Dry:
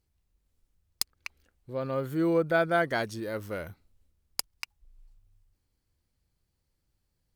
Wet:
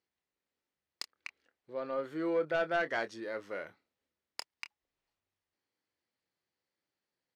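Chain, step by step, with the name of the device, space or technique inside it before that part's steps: intercom (band-pass 340–4800 Hz; peaking EQ 1.9 kHz +4.5 dB 0.34 oct; saturation -20 dBFS, distortion -14 dB; doubling 26 ms -11 dB); trim -3.5 dB

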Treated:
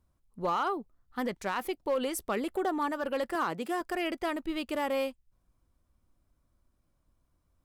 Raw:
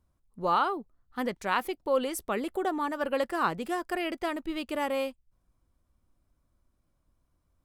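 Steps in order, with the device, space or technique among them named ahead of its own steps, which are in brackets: limiter into clipper (peak limiter -20.5 dBFS, peak gain reduction 7.5 dB; hard clipper -23 dBFS, distortion -24 dB); 3.35–3.81 s: high-pass 170 Hz

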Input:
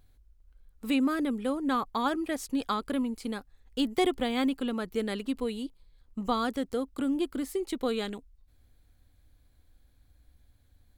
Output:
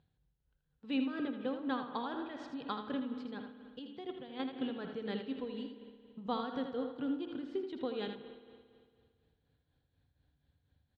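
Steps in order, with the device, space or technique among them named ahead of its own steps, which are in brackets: combo amplifier with spring reverb and tremolo (spring tank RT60 2.1 s, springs 56 ms, chirp 25 ms, DRR 8 dB; tremolo 4.1 Hz, depth 58%; cabinet simulation 110–3700 Hz, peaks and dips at 150 Hz +10 dB, 220 Hz -4 dB, 320 Hz -5 dB, 630 Hz -5 dB, 1.2 kHz -7 dB, 2.2 kHz -9 dB); 3.79–4.53 s: gate -29 dBFS, range -9 dB; delay 80 ms -8 dB; trim -3.5 dB

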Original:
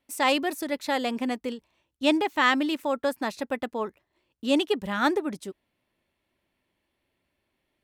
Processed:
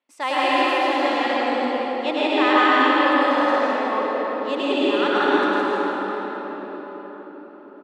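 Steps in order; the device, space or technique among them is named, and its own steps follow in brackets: station announcement (band-pass 340–4600 Hz; peaking EQ 1.1 kHz +4.5 dB 0.49 oct; loudspeakers at several distances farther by 35 m -2 dB, 56 m -2 dB; reverberation RT60 5.3 s, pre-delay 110 ms, DRR -7.5 dB); trim -4 dB

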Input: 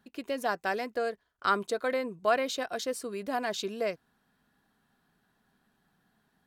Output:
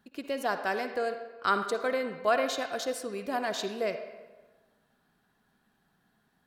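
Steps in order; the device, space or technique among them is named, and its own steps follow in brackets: filtered reverb send (on a send: high-pass 480 Hz 6 dB/octave + low-pass 5.2 kHz 12 dB/octave + reverberation RT60 1.3 s, pre-delay 49 ms, DRR 7.5 dB)

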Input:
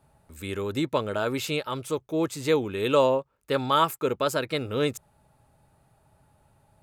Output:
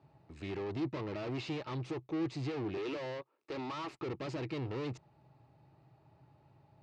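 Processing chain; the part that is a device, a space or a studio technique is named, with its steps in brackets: 2.77–3.97 s: high-pass 280 Hz 24 dB/octave; guitar amplifier (valve stage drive 39 dB, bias 0.65; tone controls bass +1 dB, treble +6 dB; cabinet simulation 100–4000 Hz, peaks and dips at 130 Hz +7 dB, 220 Hz -4 dB, 330 Hz +9 dB, 540 Hz -3 dB, 1.5 kHz -7 dB, 3.4 kHz -7 dB); trim +1 dB

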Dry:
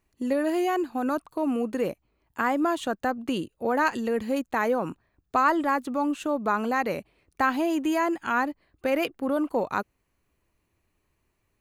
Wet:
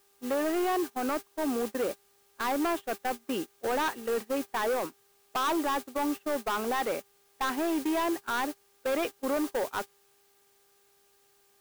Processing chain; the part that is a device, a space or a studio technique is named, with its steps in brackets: aircraft radio (band-pass 300–2600 Hz; hard clipper -25.5 dBFS, distortion -8 dB; mains buzz 400 Hz, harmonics 4, -48 dBFS -6 dB/octave; white noise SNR 12 dB; gate -32 dBFS, range -23 dB)

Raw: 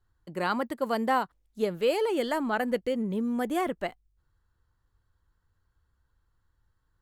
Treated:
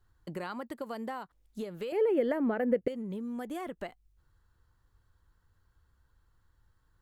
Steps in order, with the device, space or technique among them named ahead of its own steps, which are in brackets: serial compression, leveller first (compression 2.5:1, threshold -31 dBFS, peak gain reduction 7.5 dB; compression 4:1, threshold -40 dBFS, peak gain reduction 11 dB); 1.92–2.88 s: graphic EQ 125/250/500/1000/2000/4000/8000 Hz +11/+5/+12/-4/+8/-10/-11 dB; trim +3.5 dB

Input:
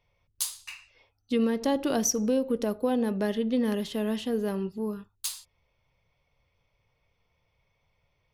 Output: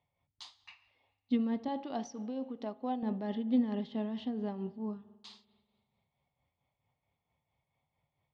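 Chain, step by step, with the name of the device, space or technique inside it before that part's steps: combo amplifier with spring reverb and tremolo (spring tank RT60 1.8 s, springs 49 ms, chirp 40 ms, DRR 17.5 dB; tremolo 4.5 Hz, depth 50%; cabinet simulation 75–4000 Hz, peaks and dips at 150 Hz +5 dB, 250 Hz +7 dB, 470 Hz -6 dB, 780 Hz +8 dB, 1.5 kHz -8 dB, 2.6 kHz -6 dB); 1.68–3.03 s: bass shelf 300 Hz -12 dB; trim -6.5 dB

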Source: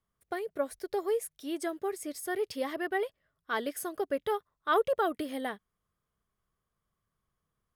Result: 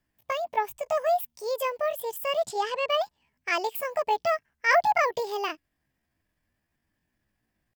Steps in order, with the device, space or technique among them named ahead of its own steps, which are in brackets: 2.45–2.92 s: low-pass 5.7 kHz 12 dB/octave; chipmunk voice (pitch shift +7.5 st); trim +5.5 dB

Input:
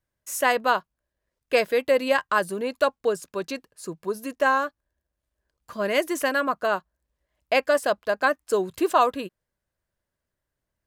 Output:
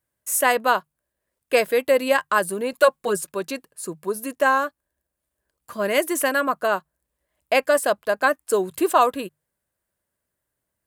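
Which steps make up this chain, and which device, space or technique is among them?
budget condenser microphone (high-pass 91 Hz 6 dB/octave; resonant high shelf 7.3 kHz +6 dB, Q 1.5); hum notches 50/100/150 Hz; 2.72–3.32 s: comb 5.5 ms, depth 97%; trim +2.5 dB

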